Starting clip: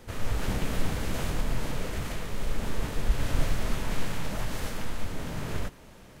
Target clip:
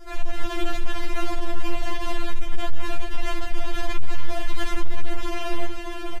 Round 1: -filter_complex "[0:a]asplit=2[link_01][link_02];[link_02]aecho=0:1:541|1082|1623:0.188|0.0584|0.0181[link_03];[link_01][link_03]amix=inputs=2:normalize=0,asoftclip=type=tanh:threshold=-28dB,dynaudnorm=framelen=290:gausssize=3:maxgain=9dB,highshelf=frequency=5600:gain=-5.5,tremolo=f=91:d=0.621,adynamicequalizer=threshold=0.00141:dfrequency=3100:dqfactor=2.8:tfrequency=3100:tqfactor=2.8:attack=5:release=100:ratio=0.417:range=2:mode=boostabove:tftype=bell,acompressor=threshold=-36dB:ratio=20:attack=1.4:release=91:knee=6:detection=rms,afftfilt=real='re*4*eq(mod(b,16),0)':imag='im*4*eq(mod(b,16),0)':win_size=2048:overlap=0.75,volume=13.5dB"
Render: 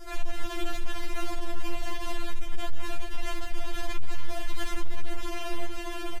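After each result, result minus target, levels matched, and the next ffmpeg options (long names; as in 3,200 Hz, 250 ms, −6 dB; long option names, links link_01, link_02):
downward compressor: peak gain reduction +6 dB; 8,000 Hz band +4.0 dB
-filter_complex "[0:a]asplit=2[link_01][link_02];[link_02]aecho=0:1:541|1082|1623:0.188|0.0584|0.0181[link_03];[link_01][link_03]amix=inputs=2:normalize=0,asoftclip=type=tanh:threshold=-28dB,dynaudnorm=framelen=290:gausssize=3:maxgain=9dB,highshelf=frequency=5600:gain=-5.5,tremolo=f=91:d=0.621,adynamicequalizer=threshold=0.00141:dfrequency=3100:dqfactor=2.8:tfrequency=3100:tqfactor=2.8:attack=5:release=100:ratio=0.417:range=2:mode=boostabove:tftype=bell,acompressor=threshold=-29.5dB:ratio=20:attack=1.4:release=91:knee=6:detection=rms,afftfilt=real='re*4*eq(mod(b,16),0)':imag='im*4*eq(mod(b,16),0)':win_size=2048:overlap=0.75,volume=13.5dB"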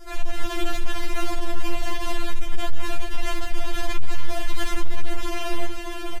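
8,000 Hz band +4.0 dB
-filter_complex "[0:a]asplit=2[link_01][link_02];[link_02]aecho=0:1:541|1082|1623:0.188|0.0584|0.0181[link_03];[link_01][link_03]amix=inputs=2:normalize=0,asoftclip=type=tanh:threshold=-28dB,dynaudnorm=framelen=290:gausssize=3:maxgain=9dB,highshelf=frequency=5600:gain=-13,tremolo=f=91:d=0.621,adynamicequalizer=threshold=0.00141:dfrequency=3100:dqfactor=2.8:tfrequency=3100:tqfactor=2.8:attack=5:release=100:ratio=0.417:range=2:mode=boostabove:tftype=bell,acompressor=threshold=-29.5dB:ratio=20:attack=1.4:release=91:knee=6:detection=rms,afftfilt=real='re*4*eq(mod(b,16),0)':imag='im*4*eq(mod(b,16),0)':win_size=2048:overlap=0.75,volume=13.5dB"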